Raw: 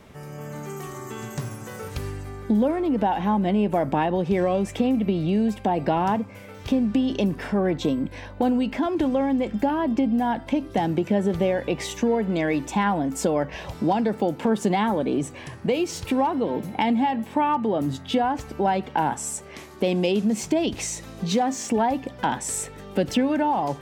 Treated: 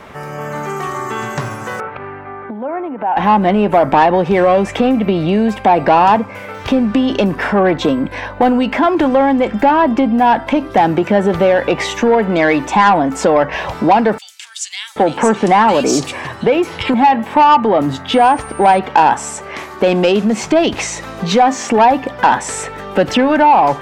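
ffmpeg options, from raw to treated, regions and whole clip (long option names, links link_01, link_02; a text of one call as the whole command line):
ffmpeg -i in.wav -filter_complex "[0:a]asettb=1/sr,asplit=3[link_01][link_02][link_03];[link_01]atrim=end=1.804[link_04];[link_02]atrim=start=1.8:end=3.17,asetpts=PTS-STARTPTS,afade=type=in:duration=0.004:curve=qsin,afade=type=out:start_time=1.366:duration=0.004:curve=qsin,acompressor=threshold=-28dB:ratio=4:attack=3.2:release=140:knee=1:detection=peak,highpass=190,equalizer=frequency=200:width_type=q:width=4:gain=-5,equalizer=frequency=310:width_type=q:width=4:gain=-5,equalizer=frequency=480:width_type=q:width=4:gain=-6,equalizer=frequency=1100:width_type=q:width=4:gain=-3,equalizer=frequency=1800:width_type=q:width=4:gain=-5,lowpass=frequency=2200:width=0.5412,lowpass=frequency=2200:width=1.3066[link_05];[link_03]atrim=start=3.166[link_06];[link_04][link_05]acrossfade=duration=0.004:curve1=hsin:curve2=qsin[link_07];[link_07][link_06]acrossfade=duration=0.004:curve1=qsin:curve2=hsin,asettb=1/sr,asplit=3[link_08][link_09][link_10];[link_08]atrim=end=14.184[link_11];[link_09]atrim=start=14.18:end=16.94,asetpts=PTS-STARTPTS,afade=type=in:duration=0.004:curve=qsin,afade=type=out:start_time=2.756:duration=0.004:curve=qsin,equalizer=frequency=7600:width_type=o:width=1.3:gain=11,acrossover=split=2800[link_12][link_13];[link_12]adelay=780[link_14];[link_14][link_13]amix=inputs=2:normalize=0,atrim=end_sample=121716[link_15];[link_10]atrim=start=16.936[link_16];[link_11][link_15]acrossfade=duration=0.004:curve1=hsin:curve2=qsin[link_17];[link_17][link_16]acrossfade=duration=0.004:curve1=qsin:curve2=hsin,asettb=1/sr,asplit=3[link_18][link_19][link_20];[link_18]atrim=end=18.144[link_21];[link_19]atrim=start=18.14:end=18.79,asetpts=PTS-STARTPTS,afade=type=in:duration=0.004:curve=qsin,afade=type=out:start_time=0.646:duration=0.004:curve=qsin,equalizer=frequency=7200:width=0.69:gain=-5,aeval=exprs='sgn(val(0))*max(abs(val(0))-0.00168,0)':channel_layout=same,aeval=exprs='val(0)+0.01*sin(2*PI*8900*n/s)':channel_layout=same[link_22];[link_20]atrim=start=18.786[link_23];[link_21][link_22]acrossfade=duration=0.004:curve1=hsin:curve2=qsin[link_24];[link_24][link_23]acrossfade=duration=0.004:curve1=qsin:curve2=hsin,acrossover=split=8600[link_25][link_26];[link_26]acompressor=threshold=-54dB:ratio=4:attack=1:release=60[link_27];[link_25][link_27]amix=inputs=2:normalize=0,equalizer=frequency=1200:width=0.43:gain=12.5,acontrast=74,volume=-1dB" out.wav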